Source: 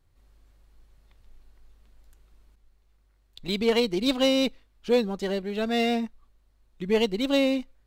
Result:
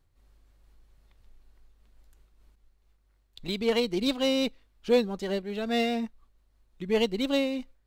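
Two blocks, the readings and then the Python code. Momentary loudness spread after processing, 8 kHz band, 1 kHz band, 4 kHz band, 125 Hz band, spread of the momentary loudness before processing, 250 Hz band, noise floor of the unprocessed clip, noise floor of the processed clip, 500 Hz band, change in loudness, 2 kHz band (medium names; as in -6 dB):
10 LU, -3.0 dB, -2.5 dB, -3.0 dB, -2.5 dB, 10 LU, -3.0 dB, -64 dBFS, -67 dBFS, -2.5 dB, -2.5 dB, -2.5 dB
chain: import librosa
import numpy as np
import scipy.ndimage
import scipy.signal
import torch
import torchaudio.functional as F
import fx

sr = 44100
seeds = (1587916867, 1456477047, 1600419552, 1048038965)

y = fx.am_noise(x, sr, seeds[0], hz=5.7, depth_pct=55)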